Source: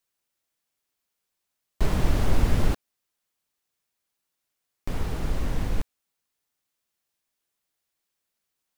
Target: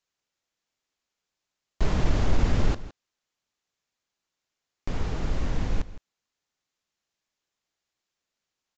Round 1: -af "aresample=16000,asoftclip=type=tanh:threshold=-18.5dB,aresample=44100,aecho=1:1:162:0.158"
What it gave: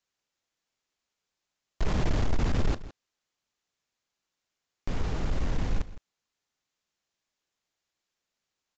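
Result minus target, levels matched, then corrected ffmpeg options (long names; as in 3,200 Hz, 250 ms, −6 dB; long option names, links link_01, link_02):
soft clipping: distortion +14 dB
-af "aresample=16000,asoftclip=type=tanh:threshold=-8dB,aresample=44100,aecho=1:1:162:0.158"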